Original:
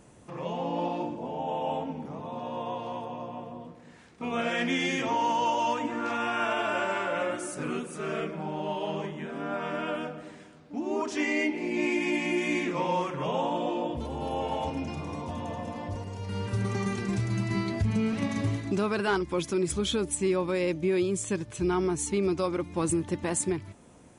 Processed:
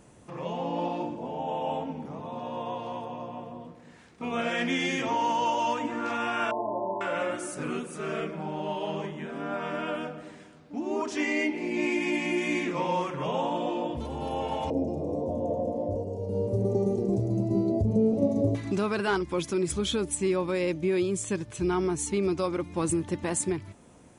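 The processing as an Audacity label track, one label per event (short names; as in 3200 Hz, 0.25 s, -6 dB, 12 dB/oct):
6.510000	7.010000	brick-wall FIR low-pass 1100 Hz
14.700000	18.550000	EQ curve 170 Hz 0 dB, 570 Hz +13 dB, 1600 Hz -30 dB, 6400 Hz -11 dB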